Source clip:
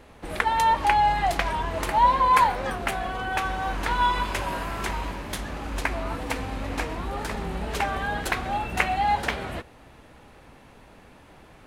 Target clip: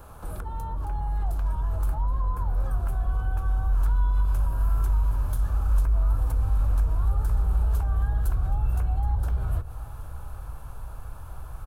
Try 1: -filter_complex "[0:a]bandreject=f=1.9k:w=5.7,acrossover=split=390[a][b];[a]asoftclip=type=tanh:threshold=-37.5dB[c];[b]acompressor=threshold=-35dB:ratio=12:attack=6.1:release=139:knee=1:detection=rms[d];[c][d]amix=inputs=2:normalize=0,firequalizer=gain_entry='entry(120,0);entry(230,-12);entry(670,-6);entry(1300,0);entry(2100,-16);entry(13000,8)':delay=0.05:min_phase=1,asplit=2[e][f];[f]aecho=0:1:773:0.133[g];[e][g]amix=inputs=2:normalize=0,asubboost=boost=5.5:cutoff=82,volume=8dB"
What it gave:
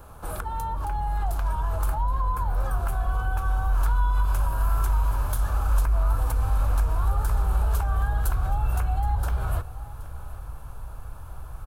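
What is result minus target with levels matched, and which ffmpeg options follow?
compressor: peak gain reduction -8.5 dB
-filter_complex "[0:a]bandreject=f=1.9k:w=5.7,acrossover=split=390[a][b];[a]asoftclip=type=tanh:threshold=-37.5dB[c];[b]acompressor=threshold=-44.5dB:ratio=12:attack=6.1:release=139:knee=1:detection=rms[d];[c][d]amix=inputs=2:normalize=0,firequalizer=gain_entry='entry(120,0);entry(230,-12);entry(670,-6);entry(1300,0);entry(2100,-16);entry(13000,8)':delay=0.05:min_phase=1,asplit=2[e][f];[f]aecho=0:1:773:0.133[g];[e][g]amix=inputs=2:normalize=0,asubboost=boost=5.5:cutoff=82,volume=8dB"

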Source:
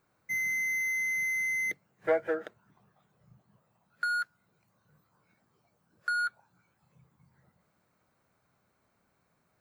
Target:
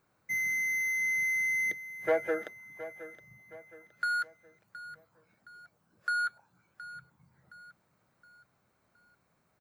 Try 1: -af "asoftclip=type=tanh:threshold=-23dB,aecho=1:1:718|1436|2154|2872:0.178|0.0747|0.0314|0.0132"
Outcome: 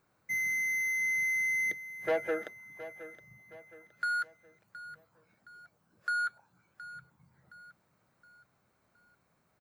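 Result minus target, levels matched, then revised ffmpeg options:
soft clip: distortion +11 dB
-af "asoftclip=type=tanh:threshold=-15dB,aecho=1:1:718|1436|2154|2872:0.178|0.0747|0.0314|0.0132"

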